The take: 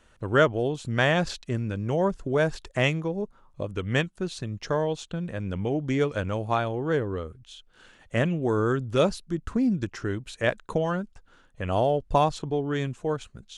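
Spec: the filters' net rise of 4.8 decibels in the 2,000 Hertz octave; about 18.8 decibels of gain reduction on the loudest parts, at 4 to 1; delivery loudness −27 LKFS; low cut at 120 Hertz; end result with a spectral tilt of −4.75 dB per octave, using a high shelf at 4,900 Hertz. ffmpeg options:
ffmpeg -i in.wav -af "highpass=120,equalizer=frequency=2000:width_type=o:gain=7,highshelf=frequency=4900:gain=-5.5,acompressor=threshold=-38dB:ratio=4,volume=13.5dB" out.wav

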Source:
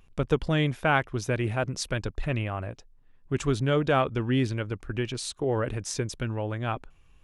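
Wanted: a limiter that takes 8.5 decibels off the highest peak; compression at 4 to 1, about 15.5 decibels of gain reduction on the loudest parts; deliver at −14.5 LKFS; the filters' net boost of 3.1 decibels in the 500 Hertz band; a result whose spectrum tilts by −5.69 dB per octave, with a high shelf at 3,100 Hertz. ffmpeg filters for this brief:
ffmpeg -i in.wav -af "equalizer=frequency=500:width_type=o:gain=4,highshelf=frequency=3100:gain=-7.5,acompressor=threshold=-36dB:ratio=4,volume=27dB,alimiter=limit=-4.5dB:level=0:latency=1" out.wav

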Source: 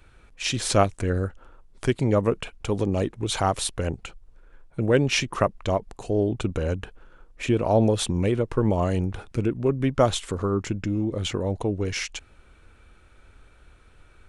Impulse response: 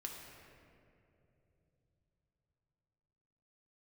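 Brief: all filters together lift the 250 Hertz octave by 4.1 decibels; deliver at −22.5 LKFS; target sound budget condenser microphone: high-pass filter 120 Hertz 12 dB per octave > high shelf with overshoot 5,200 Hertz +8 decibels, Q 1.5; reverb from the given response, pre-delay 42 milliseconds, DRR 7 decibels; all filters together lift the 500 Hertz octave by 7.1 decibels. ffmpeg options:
-filter_complex "[0:a]equalizer=frequency=250:width_type=o:gain=3,equalizer=frequency=500:width_type=o:gain=8,asplit=2[link_01][link_02];[1:a]atrim=start_sample=2205,adelay=42[link_03];[link_02][link_03]afir=irnorm=-1:irlink=0,volume=-5dB[link_04];[link_01][link_04]amix=inputs=2:normalize=0,highpass=120,highshelf=frequency=5200:width_type=q:width=1.5:gain=8,volume=-3dB"

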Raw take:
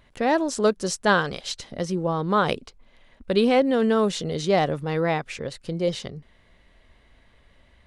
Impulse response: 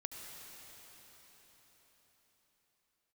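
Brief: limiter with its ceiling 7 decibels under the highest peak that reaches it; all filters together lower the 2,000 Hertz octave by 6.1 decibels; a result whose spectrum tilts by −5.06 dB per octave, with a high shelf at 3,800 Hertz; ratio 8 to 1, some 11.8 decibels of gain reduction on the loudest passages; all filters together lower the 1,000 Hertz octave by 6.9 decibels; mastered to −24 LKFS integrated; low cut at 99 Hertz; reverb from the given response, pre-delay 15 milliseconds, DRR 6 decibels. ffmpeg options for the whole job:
-filter_complex "[0:a]highpass=99,equalizer=frequency=1000:width_type=o:gain=-8.5,equalizer=frequency=2000:width_type=o:gain=-3.5,highshelf=frequency=3800:gain=-4.5,acompressor=threshold=-29dB:ratio=8,alimiter=level_in=2dB:limit=-24dB:level=0:latency=1,volume=-2dB,asplit=2[link_01][link_02];[1:a]atrim=start_sample=2205,adelay=15[link_03];[link_02][link_03]afir=irnorm=-1:irlink=0,volume=-4.5dB[link_04];[link_01][link_04]amix=inputs=2:normalize=0,volume=11dB"

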